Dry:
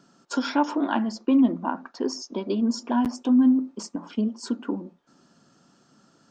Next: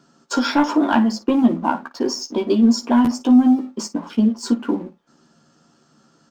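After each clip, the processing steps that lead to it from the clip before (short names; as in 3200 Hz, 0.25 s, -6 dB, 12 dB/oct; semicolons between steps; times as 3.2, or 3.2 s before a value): sample leveller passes 1; on a send: early reflections 13 ms -4.5 dB, 56 ms -16 dB; on the sum: gain +3 dB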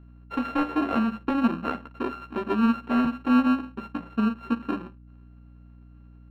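sample sorter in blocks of 32 samples; air absorption 500 m; hum 60 Hz, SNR 22 dB; gain -6.5 dB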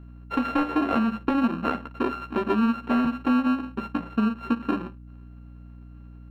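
compressor 4:1, threshold -25 dBFS, peak gain reduction 8.5 dB; gain +5 dB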